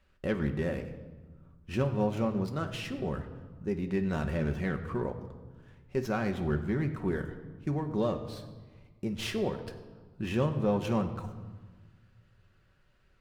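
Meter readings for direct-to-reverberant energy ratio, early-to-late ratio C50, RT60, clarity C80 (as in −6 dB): 5.0 dB, 10.5 dB, 1.4 s, 12.0 dB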